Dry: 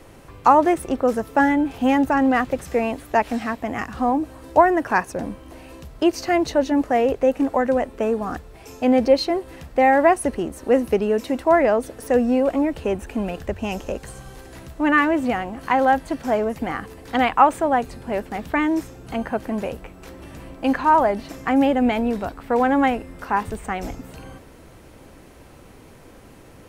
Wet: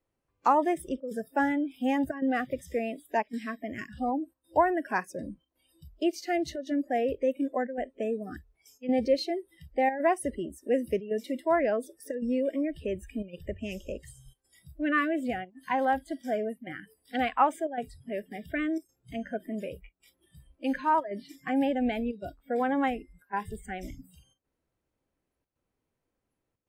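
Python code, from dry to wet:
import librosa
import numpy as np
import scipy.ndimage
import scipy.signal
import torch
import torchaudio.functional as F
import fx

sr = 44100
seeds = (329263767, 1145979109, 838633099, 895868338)

y = fx.chopper(x, sr, hz=0.9, depth_pct=65, duty_pct=90)
y = fx.noise_reduce_blind(y, sr, reduce_db=28)
y = F.gain(torch.from_numpy(y), -9.0).numpy()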